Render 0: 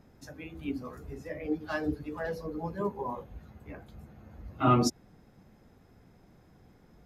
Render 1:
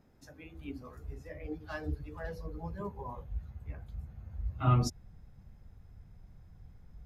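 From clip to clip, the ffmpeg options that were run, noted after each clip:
ffmpeg -i in.wav -af "asubboost=boost=11.5:cutoff=90,volume=-6.5dB" out.wav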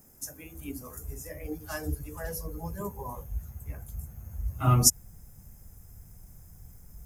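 ffmpeg -i in.wav -af "aexciter=amount=14.6:drive=6.3:freq=6100,volume=3.5dB" out.wav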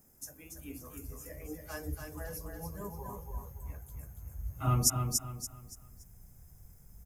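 ffmpeg -i in.wav -af "aecho=1:1:285|570|855|1140:0.562|0.186|0.0612|0.0202,volume=-6.5dB" out.wav

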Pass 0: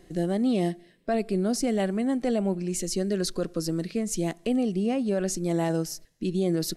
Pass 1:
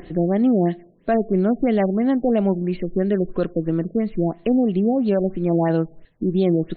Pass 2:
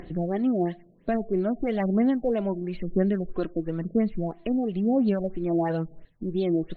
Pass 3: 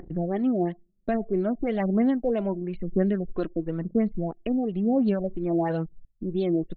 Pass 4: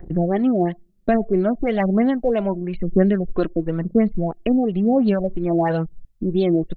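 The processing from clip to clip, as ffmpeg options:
ffmpeg -i in.wav -af "acompressor=mode=upward:threshold=-40dB:ratio=2.5,afftfilt=real='re*lt(b*sr/1024,770*pow(4500/770,0.5+0.5*sin(2*PI*3*pts/sr)))':imag='im*lt(b*sr/1024,770*pow(4500/770,0.5+0.5*sin(2*PI*3*pts/sr)))':win_size=1024:overlap=0.75,volume=7dB" out.wav
ffmpeg -i in.wav -af "equalizer=frequency=370:width=1.5:gain=-2.5,aphaser=in_gain=1:out_gain=1:delay=3.2:decay=0.46:speed=1:type=sinusoidal,volume=-6dB" out.wav
ffmpeg -i in.wav -af "anlmdn=0.398" out.wav
ffmpeg -i in.wav -af "adynamicequalizer=threshold=0.0158:dfrequency=290:dqfactor=0.97:tfrequency=290:tqfactor=0.97:attack=5:release=100:ratio=0.375:range=3:mode=cutabove:tftype=bell,volume=8.5dB" out.wav

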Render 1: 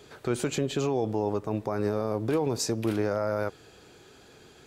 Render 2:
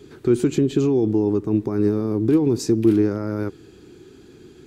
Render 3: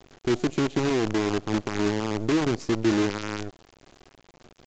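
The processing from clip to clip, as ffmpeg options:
ffmpeg -i in.wav -af "lowshelf=frequency=450:width_type=q:width=3:gain=8.5,volume=-1dB" out.wav
ffmpeg -i in.wav -af "acrusher=bits=4:dc=4:mix=0:aa=0.000001,aresample=16000,aresample=44100,volume=-6.5dB" out.wav

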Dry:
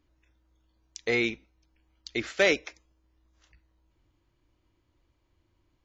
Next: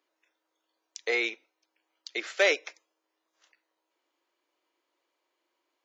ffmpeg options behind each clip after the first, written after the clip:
ffmpeg -i in.wav -af "highpass=frequency=420:width=0.5412,highpass=frequency=420:width=1.3066" out.wav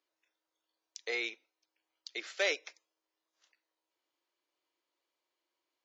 ffmpeg -i in.wav -af "equalizer=frequency=4700:width_type=o:width=1.4:gain=5.5,volume=-9dB" out.wav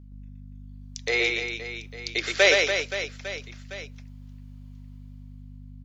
ffmpeg -i in.wav -filter_complex "[0:a]dynaudnorm=framelen=220:gausssize=9:maxgain=13dB,aeval=exprs='val(0)+0.00562*(sin(2*PI*50*n/s)+sin(2*PI*2*50*n/s)/2+sin(2*PI*3*50*n/s)/3+sin(2*PI*4*50*n/s)/4+sin(2*PI*5*50*n/s)/5)':channel_layout=same,asplit=2[link_01][link_02];[link_02]aecho=0:1:120|288|523.2|852.5|1313:0.631|0.398|0.251|0.158|0.1[link_03];[link_01][link_03]amix=inputs=2:normalize=0" out.wav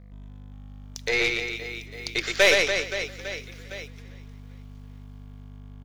ffmpeg -i in.wav -filter_complex "[0:a]acrusher=bits=8:mix=0:aa=0.5,asplit=5[link_01][link_02][link_03][link_04][link_05];[link_02]adelay=394,afreqshift=-34,volume=-20.5dB[link_06];[link_03]adelay=788,afreqshift=-68,volume=-26.7dB[link_07];[link_04]adelay=1182,afreqshift=-102,volume=-32.9dB[link_08];[link_05]adelay=1576,afreqshift=-136,volume=-39.1dB[link_09];[link_01][link_06][link_07][link_08][link_09]amix=inputs=5:normalize=0,aeval=exprs='0.596*(cos(1*acos(clip(val(0)/0.596,-1,1)))-cos(1*PI/2))+0.0335*(cos(8*acos(clip(val(0)/0.596,-1,1)))-cos(8*PI/2))':channel_layout=same" out.wav

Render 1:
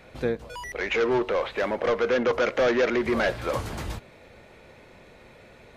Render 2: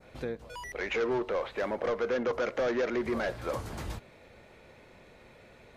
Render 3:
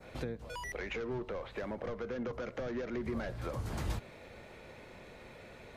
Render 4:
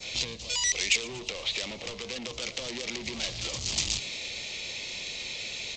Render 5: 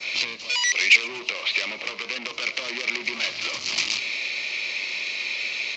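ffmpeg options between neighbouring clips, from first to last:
ffmpeg -i in.wav -af "adynamicequalizer=threshold=0.00708:dfrequency=2800:dqfactor=0.97:tfrequency=2800:tqfactor=0.97:attack=5:release=100:ratio=0.375:range=2:mode=cutabove:tftype=bell,alimiter=limit=-19dB:level=0:latency=1:release=294,volume=-4.5dB" out.wav
ffmpeg -i in.wav -filter_complex "[0:a]acrossover=split=200[link_01][link_02];[link_02]acompressor=threshold=-42dB:ratio=6[link_03];[link_01][link_03]amix=inputs=2:normalize=0,volume=3dB" out.wav
ffmpeg -i in.wav -filter_complex "[0:a]aresample=16000,asoftclip=type=tanh:threshold=-40dB,aresample=44100,aexciter=amount=16:drive=5.7:freq=2400,asplit=6[link_01][link_02][link_03][link_04][link_05][link_06];[link_02]adelay=117,afreqshift=94,volume=-19dB[link_07];[link_03]adelay=234,afreqshift=188,volume=-23.3dB[link_08];[link_04]adelay=351,afreqshift=282,volume=-27.6dB[link_09];[link_05]adelay=468,afreqshift=376,volume=-31.9dB[link_10];[link_06]adelay=585,afreqshift=470,volume=-36.2dB[link_11];[link_01][link_07][link_08][link_09][link_10][link_11]amix=inputs=6:normalize=0,volume=3dB" out.wav
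ffmpeg -i in.wav -af "highpass=380,equalizer=frequency=480:width_type=q:width=4:gain=-8,equalizer=frequency=760:width_type=q:width=4:gain=-6,equalizer=frequency=1200:width_type=q:width=4:gain=4,equalizer=frequency=2300:width_type=q:width=4:gain=7,equalizer=frequency=3500:width_type=q:width=4:gain=-6,lowpass=frequency=5100:width=0.5412,lowpass=frequency=5100:width=1.3066,volume=7.5dB" out.wav

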